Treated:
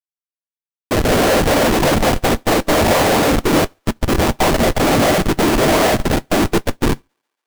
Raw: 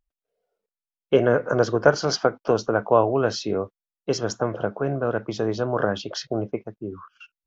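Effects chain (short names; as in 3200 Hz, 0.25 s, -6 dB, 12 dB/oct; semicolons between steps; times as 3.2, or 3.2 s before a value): notches 60/120/180/240/300/360 Hz; pre-echo 0.219 s -13.5 dB; FFT band-pass 240–3200 Hz; sample leveller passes 3; fixed phaser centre 440 Hz, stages 6; whisperiser; Schmitt trigger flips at -27 dBFS; on a send: thinning echo 0.14 s, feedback 68%, high-pass 480 Hz, level -20.5 dB; on the sum: non-linear reverb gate 0.17 s falling, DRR 10 dB; upward expander 2.5:1, over -39 dBFS; gain +9 dB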